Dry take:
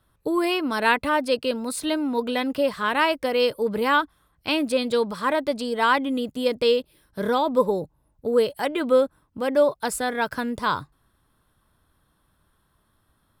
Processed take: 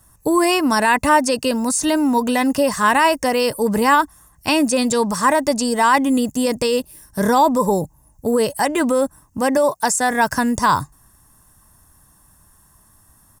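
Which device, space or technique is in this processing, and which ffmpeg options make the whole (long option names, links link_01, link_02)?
over-bright horn tweeter: -filter_complex "[0:a]highshelf=frequency=5000:width_type=q:width=3:gain=10.5,alimiter=limit=-15dB:level=0:latency=1:release=27,asettb=1/sr,asplit=3[link_01][link_02][link_03];[link_01]atrim=end=9.574[link_04];[link_02]atrim=start=9.57:end=10.11,asetpts=PTS-STARTPTS,afade=type=in:duration=0.004:curve=qsin,afade=type=out:start_time=0.536:duration=0.004:curve=qsin,highpass=frequency=240:poles=1[link_05];[link_03]atrim=start=10.106[link_06];[link_04][link_05]acrossfade=duration=0.004:curve1=hsin:curve2=qsin[link_07];[link_07][link_06]acrossfade=duration=0.004:curve1=qsin:curve2=hsin,acrossover=split=8100[link_08][link_09];[link_09]acompressor=threshold=-43dB:ratio=4:attack=1:release=60[link_10];[link_08][link_10]amix=inputs=2:normalize=0,aecho=1:1:1.1:0.42,volume=9dB"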